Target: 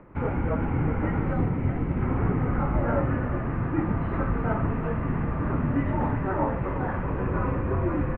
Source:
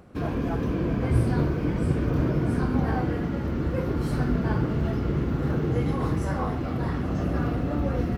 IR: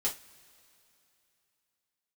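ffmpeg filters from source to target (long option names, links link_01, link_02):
-filter_complex "[0:a]asettb=1/sr,asplit=3[link_01][link_02][link_03];[link_01]atrim=end=1.334[link_04];[link_02]atrim=start=1.33:end=2.01,asetpts=PTS-STARTPTS,afade=type=in:duration=0.004:curve=qsin,afade=type=out:start_time=0.676:duration=0.004:curve=qsin,equalizer=frequency=1500:width=1.1:gain=-6[link_05];[link_03]atrim=start=2.006[link_06];[link_04][link_05]acrossfade=duration=0.004:curve1=hsin:curve2=qsin[link_07];[link_07][link_06]acrossfade=duration=0.004:curve1=qsin:curve2=hsin,aecho=1:1:369:0.237,highpass=frequency=260:width_type=q:width=0.5412,highpass=frequency=260:width_type=q:width=1.307,lowpass=frequency=2500:width_type=q:width=0.5176,lowpass=frequency=2500:width_type=q:width=0.7071,lowpass=frequency=2500:width_type=q:width=1.932,afreqshift=-200,volume=5dB"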